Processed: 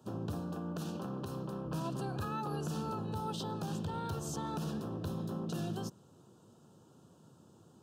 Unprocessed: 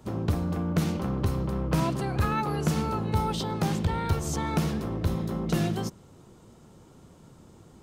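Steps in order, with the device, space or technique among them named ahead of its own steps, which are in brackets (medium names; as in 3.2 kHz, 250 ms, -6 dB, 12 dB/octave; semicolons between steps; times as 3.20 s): PA system with an anti-feedback notch (high-pass 100 Hz 24 dB/octave; Butterworth band-stop 2.1 kHz, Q 2.2; peak limiter -21.5 dBFS, peak gain reduction 8.5 dB); 0.40–1.66 s: high-pass 160 Hz 6 dB/octave; trim -7.5 dB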